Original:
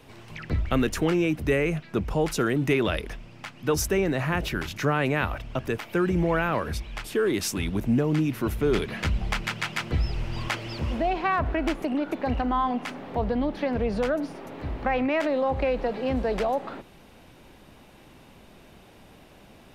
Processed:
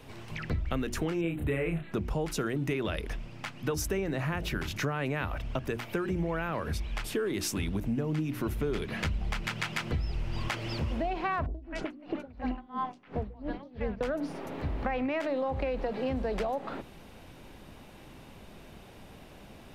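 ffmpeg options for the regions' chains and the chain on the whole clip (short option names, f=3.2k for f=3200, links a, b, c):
-filter_complex "[0:a]asettb=1/sr,asplit=3[a][b][c];[a]atrim=end=1.214[d];[b]atrim=start=1.21:end=1.92,asetpts=PTS-STARTPTS,afade=t=in:d=0.004:c=qsin,afade=t=out:st=0.706:d=0.004:c=qsin,asuperstop=centerf=5500:order=8:qfactor=1.9,equalizer=f=5.1k:w=3.1:g=-12,asplit=2[e][f];[f]adelay=30,volume=-2.5dB[g];[e][g]amix=inputs=2:normalize=0,atrim=end_sample=31311[h];[c]atrim=start=1.916[i];[d][h]acrossfade=d=0.004:c1=hsin:c2=qsin[j];[j][i]acrossfade=d=0.004:c1=qsin:c2=hsin,asettb=1/sr,asplit=3[k][l][m];[k]atrim=end=11.464[n];[l]atrim=start=11.46:end=14.01,asetpts=PTS-STARTPTS,afade=t=in:d=0.004:c=qsin,afade=t=out:st=2.546:d=0.004:c=qsin,lowpass=6.6k,acrossover=split=670|3600[o][p][q];[q]adelay=80[r];[p]adelay=180[s];[o][s][r]amix=inputs=3:normalize=0,atrim=end_sample=112455,aeval=exprs='val(0)*pow(10,-27*(0.5-0.5*cos(2*PI*2.9*n/s))/20)':c=same[t];[m]atrim=start=14.006[u];[n][t]acrossfade=d=0.004:c1=hsin:c2=qsin[v];[v][u]acrossfade=d=0.004:c1=qsin:c2=hsin,lowshelf=f=190:g=4,bandreject=f=60:t=h:w=6,bandreject=f=120:t=h:w=6,bandreject=f=180:t=h:w=6,bandreject=f=240:t=h:w=6,bandreject=f=300:t=h:w=6,bandreject=f=360:t=h:w=6,acompressor=threshold=-29dB:ratio=4"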